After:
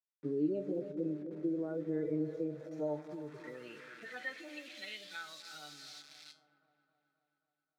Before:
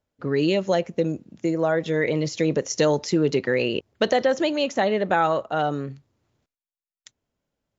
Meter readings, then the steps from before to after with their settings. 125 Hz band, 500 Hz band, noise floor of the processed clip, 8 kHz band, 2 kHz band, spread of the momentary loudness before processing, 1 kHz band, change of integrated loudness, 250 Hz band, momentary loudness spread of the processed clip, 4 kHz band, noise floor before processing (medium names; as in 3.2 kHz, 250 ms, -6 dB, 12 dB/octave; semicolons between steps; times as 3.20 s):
-18.0 dB, -18.0 dB, under -85 dBFS, no reading, -17.0 dB, 6 LU, -27.5 dB, -16.0 dB, -12.5 dB, 14 LU, -17.5 dB, under -85 dBFS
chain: harmonic-percussive separation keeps harmonic; thinning echo 318 ms, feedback 49%, high-pass 440 Hz, level -14 dB; in parallel at -2.5 dB: peak limiter -19 dBFS, peak gain reduction 10 dB; on the sum: treble shelf 6.6 kHz +11 dB; word length cut 6-bit, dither none; high-order bell 670 Hz -9 dB; band-stop 2.9 kHz, Q 9; on a send: feedback echo behind a low-pass 266 ms, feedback 63%, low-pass 1.1 kHz, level -12.5 dB; on the sum: compression, threshold -21 dBFS, peak gain reduction 6 dB; feedback comb 150 Hz, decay 0.33 s, harmonics all, mix 70%; band-pass sweep 410 Hz -> 4.4 kHz, 2.19–5.32 s; trim +3.5 dB